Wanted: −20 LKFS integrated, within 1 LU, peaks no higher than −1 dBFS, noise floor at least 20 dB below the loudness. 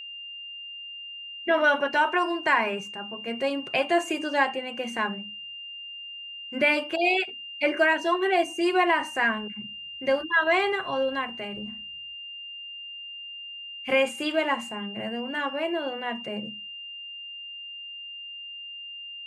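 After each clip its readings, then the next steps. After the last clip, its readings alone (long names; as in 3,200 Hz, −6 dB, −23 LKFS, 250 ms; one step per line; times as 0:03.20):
interfering tone 2,800 Hz; level of the tone −37 dBFS; integrated loudness −27.5 LKFS; sample peak −9.5 dBFS; target loudness −20.0 LKFS
→ notch filter 2,800 Hz, Q 30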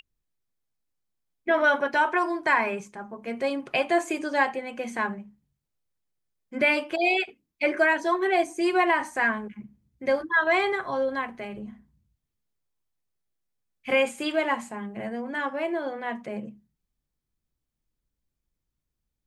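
interfering tone none found; integrated loudness −25.5 LKFS; sample peak −9.5 dBFS; target loudness −20.0 LKFS
→ level +5.5 dB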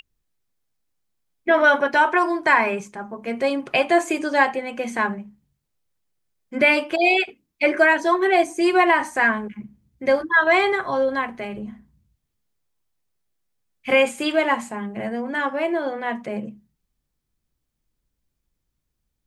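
integrated loudness −20.0 LKFS; sample peak −4.0 dBFS; background noise floor −78 dBFS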